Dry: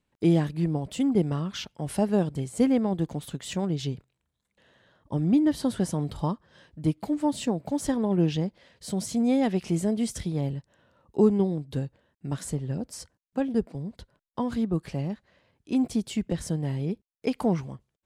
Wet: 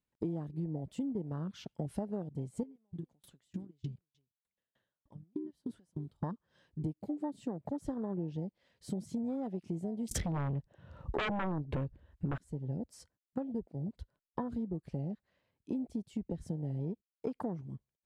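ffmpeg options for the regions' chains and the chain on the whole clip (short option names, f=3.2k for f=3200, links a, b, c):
-filter_complex "[0:a]asettb=1/sr,asplit=3[a][b][c];[a]atrim=end=2.634[d];[b]atrim=start=2.63:end=6.23,asetpts=PTS-STARTPTS,afade=t=in:d=0.004:c=qsin,afade=t=out:st=3.596:d=0.004:c=qsin,acompressor=threshold=-31dB:ratio=6:attack=3.2:release=140:knee=1:detection=peak,aecho=1:1:325:0.0668,atrim=end_sample=158760,aeval=exprs='val(0)*pow(10,-32*if(lt(mod(3.3*n/s,1),2*abs(3.3)/1000),1-mod(3.3*n/s,1)/(2*abs(3.3)/1000),(mod(3.3*n/s,1)-2*abs(3.3)/1000)/(1-2*abs(3.3)/1000))/20)':c=same[e];[c]atrim=start=6.226[f];[d][e]acrossfade=d=0.004:c1=hsin:c2=qsin[g];[g][f]acrossfade=d=0.004:c1=qsin:c2=hsin,asettb=1/sr,asplit=3[h][i][j];[h]atrim=end=10.114[k];[i]atrim=start=10.11:end=12.38,asetpts=PTS-STARTPTS,afade=t=in:d=0.004:c=qsin,afade=t=out:st=2.266:d=0.004:c=qsin,lowpass=f=3.4k:p=1,asubboost=boost=9.5:cutoff=54,aeval=exprs='0.299*sin(PI/2*7.08*val(0)/0.299)':c=same[l];[j]atrim=start=12.376[m];[k][l]acrossfade=d=0.004:c1=hsin:c2=qsin[n];[n][m]acrossfade=d=0.004:c1=qsin:c2=hsin,afwtdn=0.0251,acompressor=threshold=-37dB:ratio=10,volume=3dB"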